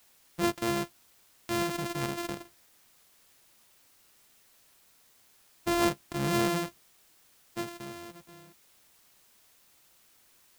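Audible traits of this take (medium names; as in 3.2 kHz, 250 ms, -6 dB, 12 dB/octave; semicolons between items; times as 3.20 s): a buzz of ramps at a fixed pitch in blocks of 128 samples; tremolo triangle 1.1 Hz, depth 30%; a quantiser's noise floor 10-bit, dither triangular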